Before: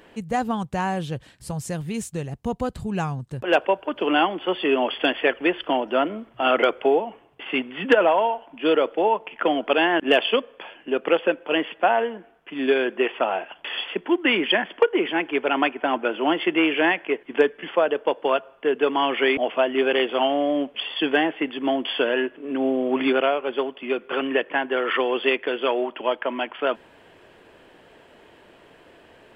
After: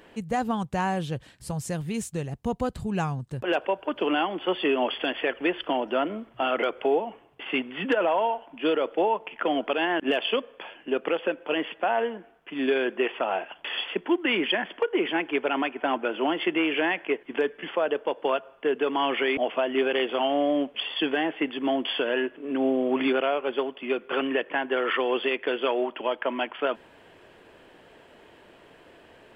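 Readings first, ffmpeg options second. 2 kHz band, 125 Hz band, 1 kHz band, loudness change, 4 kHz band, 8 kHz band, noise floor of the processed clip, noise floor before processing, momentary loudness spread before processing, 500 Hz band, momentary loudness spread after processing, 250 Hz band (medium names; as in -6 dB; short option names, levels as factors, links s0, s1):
-4.5 dB, -1.5 dB, -4.0 dB, -4.0 dB, -3.5 dB, no reading, -54 dBFS, -52 dBFS, 9 LU, -4.0 dB, 6 LU, -3.0 dB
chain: -af "alimiter=limit=0.211:level=0:latency=1:release=108,volume=0.841"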